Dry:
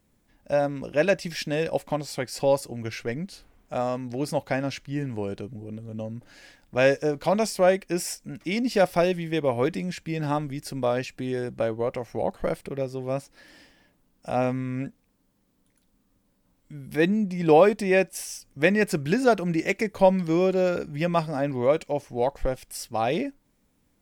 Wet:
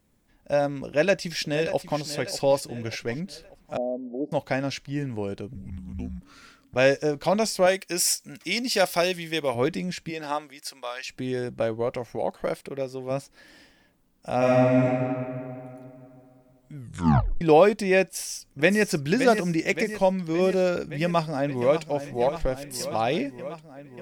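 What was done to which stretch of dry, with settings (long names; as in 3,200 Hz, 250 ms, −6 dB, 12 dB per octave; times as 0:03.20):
0:00.85–0:01.99: delay throw 590 ms, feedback 45%, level −12 dB
0:03.77–0:04.32: elliptic band-pass filter 190–650 Hz
0:05.55–0:06.76: frequency shifter −300 Hz
0:07.66–0:09.55: spectral tilt +2.5 dB per octave
0:10.09–0:11.06: high-pass filter 340 Hz → 1,500 Hz
0:12.16–0:13.11: low-shelf EQ 130 Hz −12 dB
0:14.37–0:14.86: thrown reverb, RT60 2.7 s, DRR −7 dB
0:16.76: tape stop 0.65 s
0:18.02–0:18.87: delay throw 570 ms, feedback 65%, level −8 dB
0:19.95–0:20.39: clip gain −3.5 dB
0:21.02–0:21.85: delay throw 590 ms, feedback 80%, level −11.5 dB
whole clip: dynamic equaliser 4,800 Hz, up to +4 dB, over −48 dBFS, Q 0.96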